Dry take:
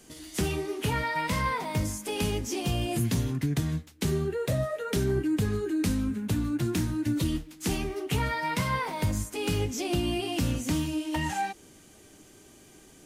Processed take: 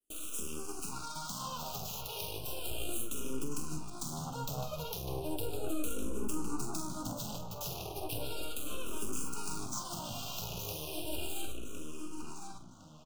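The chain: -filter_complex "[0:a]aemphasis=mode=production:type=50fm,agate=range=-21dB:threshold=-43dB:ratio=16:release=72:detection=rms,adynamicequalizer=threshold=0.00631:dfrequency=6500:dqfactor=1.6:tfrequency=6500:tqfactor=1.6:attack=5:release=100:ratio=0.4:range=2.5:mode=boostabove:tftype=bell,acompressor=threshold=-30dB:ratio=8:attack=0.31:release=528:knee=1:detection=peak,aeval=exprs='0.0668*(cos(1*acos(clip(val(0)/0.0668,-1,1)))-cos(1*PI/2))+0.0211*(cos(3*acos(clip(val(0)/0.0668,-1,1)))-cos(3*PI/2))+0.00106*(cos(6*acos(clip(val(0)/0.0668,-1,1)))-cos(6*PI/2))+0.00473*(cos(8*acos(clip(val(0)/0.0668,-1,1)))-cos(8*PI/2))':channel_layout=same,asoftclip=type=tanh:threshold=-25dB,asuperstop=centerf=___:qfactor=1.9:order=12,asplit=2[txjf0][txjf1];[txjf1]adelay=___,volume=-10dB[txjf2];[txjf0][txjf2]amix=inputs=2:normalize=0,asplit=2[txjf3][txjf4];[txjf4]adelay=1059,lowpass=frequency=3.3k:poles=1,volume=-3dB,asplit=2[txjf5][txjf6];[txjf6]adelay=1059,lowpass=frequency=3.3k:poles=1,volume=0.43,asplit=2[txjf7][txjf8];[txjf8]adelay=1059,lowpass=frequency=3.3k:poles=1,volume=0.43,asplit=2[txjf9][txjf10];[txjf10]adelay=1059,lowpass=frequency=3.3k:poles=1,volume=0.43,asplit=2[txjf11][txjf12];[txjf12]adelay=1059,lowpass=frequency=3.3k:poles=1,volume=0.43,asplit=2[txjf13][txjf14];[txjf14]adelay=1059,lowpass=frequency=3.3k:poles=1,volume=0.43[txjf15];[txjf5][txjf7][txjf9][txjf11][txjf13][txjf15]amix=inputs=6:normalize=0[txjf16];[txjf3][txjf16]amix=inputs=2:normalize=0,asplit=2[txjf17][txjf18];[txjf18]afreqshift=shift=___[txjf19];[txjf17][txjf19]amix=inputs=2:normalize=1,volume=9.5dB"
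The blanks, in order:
1900, 46, -0.35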